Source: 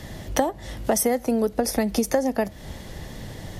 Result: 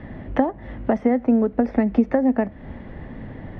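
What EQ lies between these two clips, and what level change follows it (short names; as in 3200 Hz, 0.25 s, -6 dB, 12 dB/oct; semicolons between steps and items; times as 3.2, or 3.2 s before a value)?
LPF 2200 Hz 24 dB/oct; bell 250 Hz +8.5 dB 0.44 oct; 0.0 dB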